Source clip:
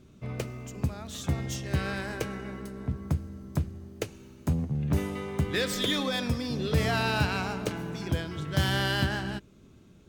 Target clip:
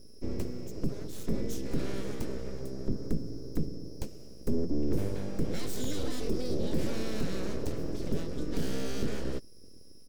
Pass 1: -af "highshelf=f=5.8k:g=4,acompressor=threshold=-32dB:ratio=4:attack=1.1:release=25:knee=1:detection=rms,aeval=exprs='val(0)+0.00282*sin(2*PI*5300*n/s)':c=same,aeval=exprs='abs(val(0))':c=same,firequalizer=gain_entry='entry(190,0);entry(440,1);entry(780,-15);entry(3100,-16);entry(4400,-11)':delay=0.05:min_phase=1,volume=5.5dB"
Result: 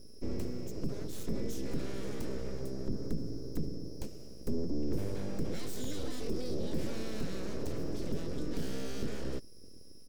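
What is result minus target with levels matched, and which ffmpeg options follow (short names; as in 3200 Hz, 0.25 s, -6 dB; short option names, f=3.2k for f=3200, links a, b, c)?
compressor: peak gain reduction +4.5 dB
-af "highshelf=f=5.8k:g=4,acompressor=threshold=-26dB:ratio=4:attack=1.1:release=25:knee=1:detection=rms,aeval=exprs='val(0)+0.00282*sin(2*PI*5300*n/s)':c=same,aeval=exprs='abs(val(0))':c=same,firequalizer=gain_entry='entry(190,0);entry(440,1);entry(780,-15);entry(3100,-16);entry(4400,-11)':delay=0.05:min_phase=1,volume=5.5dB"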